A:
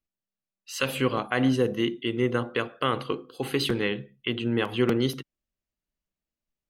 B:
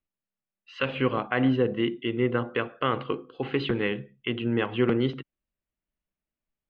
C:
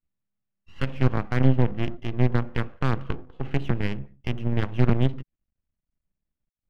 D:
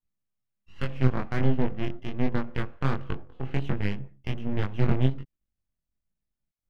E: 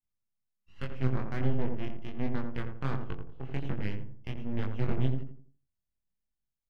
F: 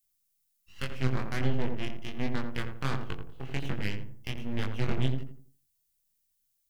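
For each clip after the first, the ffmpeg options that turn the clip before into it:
-af "lowpass=f=3000:w=0.5412,lowpass=f=3000:w=1.3066"
-af "aeval=exprs='max(val(0),0)':c=same,aeval=exprs='0.282*(cos(1*acos(clip(val(0)/0.282,-1,1)))-cos(1*PI/2))+0.0251*(cos(6*acos(clip(val(0)/0.282,-1,1)))-cos(6*PI/2))+0.0447*(cos(8*acos(clip(val(0)/0.282,-1,1)))-cos(8*PI/2))':c=same,bass=f=250:g=13,treble=f=4000:g=-14"
-af "flanger=delay=20:depth=3.4:speed=1.3"
-filter_complex "[0:a]asplit=2[s0][s1];[s1]adelay=85,lowpass=f=910:p=1,volume=0.631,asplit=2[s2][s3];[s3]adelay=85,lowpass=f=910:p=1,volume=0.37,asplit=2[s4][s5];[s5]adelay=85,lowpass=f=910:p=1,volume=0.37,asplit=2[s6][s7];[s7]adelay=85,lowpass=f=910:p=1,volume=0.37,asplit=2[s8][s9];[s9]adelay=85,lowpass=f=910:p=1,volume=0.37[s10];[s0][s2][s4][s6][s8][s10]amix=inputs=6:normalize=0,volume=0.447"
-af "crystalizer=i=6:c=0"

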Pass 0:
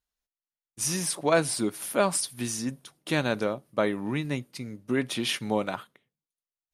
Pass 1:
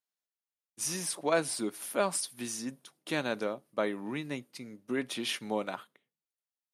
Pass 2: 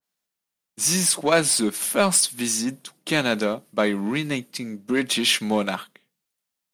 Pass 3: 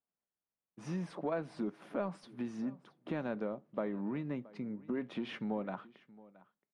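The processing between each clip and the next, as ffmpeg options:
-af "highpass=200,volume=0.562"
-filter_complex "[0:a]equalizer=f=190:w=2.6:g=7.5,asplit=2[s0][s1];[s1]volume=56.2,asoftclip=hard,volume=0.0178,volume=0.447[s2];[s0][s2]amix=inputs=2:normalize=0,adynamicequalizer=threshold=0.00631:dfrequency=1700:dqfactor=0.7:tfrequency=1700:tqfactor=0.7:attack=5:release=100:ratio=0.375:range=3:mode=boostabove:tftype=highshelf,volume=2.24"
-af "lowpass=1100,acompressor=threshold=0.0316:ratio=2.5,aecho=1:1:673:0.0891,volume=0.473"

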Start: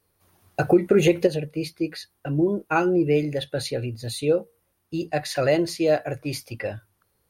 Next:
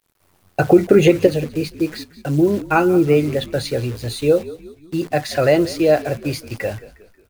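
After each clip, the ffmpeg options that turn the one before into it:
-filter_complex "[0:a]highshelf=f=4500:g=-6,acrusher=bits=8:dc=4:mix=0:aa=0.000001,asplit=5[s0][s1][s2][s3][s4];[s1]adelay=180,afreqshift=-52,volume=0.133[s5];[s2]adelay=360,afreqshift=-104,volume=0.0617[s6];[s3]adelay=540,afreqshift=-156,volume=0.0282[s7];[s4]adelay=720,afreqshift=-208,volume=0.013[s8];[s0][s5][s6][s7][s8]amix=inputs=5:normalize=0,volume=2"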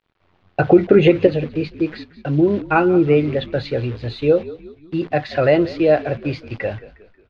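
-af "lowpass=f=3700:w=0.5412,lowpass=f=3700:w=1.3066"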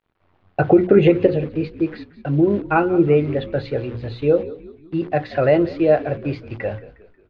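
-af "highshelf=f=2900:g=-11,bandreject=f=60:t=h:w=6,bandreject=f=120:t=h:w=6,bandreject=f=180:t=h:w=6,bandreject=f=240:t=h:w=6,bandreject=f=300:t=h:w=6,bandreject=f=360:t=h:w=6,bandreject=f=420:t=h:w=6,bandreject=f=480:t=h:w=6,bandreject=f=540:t=h:w=6"

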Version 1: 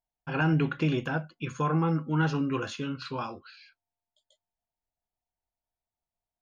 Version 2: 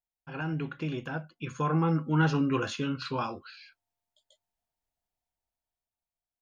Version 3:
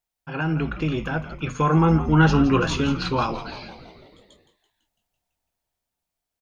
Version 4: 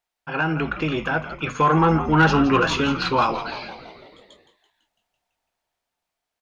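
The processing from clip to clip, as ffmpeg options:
-af "dynaudnorm=f=450:g=7:m=3.55,volume=0.376"
-filter_complex "[0:a]asplit=8[s0][s1][s2][s3][s4][s5][s6][s7];[s1]adelay=167,afreqshift=-100,volume=0.251[s8];[s2]adelay=334,afreqshift=-200,volume=0.155[s9];[s3]adelay=501,afreqshift=-300,volume=0.0966[s10];[s4]adelay=668,afreqshift=-400,volume=0.0596[s11];[s5]adelay=835,afreqshift=-500,volume=0.0372[s12];[s6]adelay=1002,afreqshift=-600,volume=0.0229[s13];[s7]adelay=1169,afreqshift=-700,volume=0.0143[s14];[s0][s8][s9][s10][s11][s12][s13][s14]amix=inputs=8:normalize=0,volume=2.66"
-filter_complex "[0:a]asplit=2[s0][s1];[s1]highpass=f=720:p=1,volume=4.47,asoftclip=type=tanh:threshold=0.531[s2];[s0][s2]amix=inputs=2:normalize=0,lowpass=f=2700:p=1,volume=0.501"

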